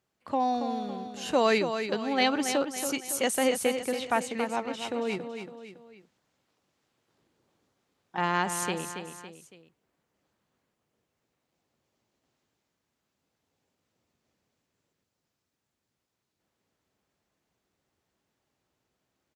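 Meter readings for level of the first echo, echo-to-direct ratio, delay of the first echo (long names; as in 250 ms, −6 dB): −8.0 dB, −7.0 dB, 279 ms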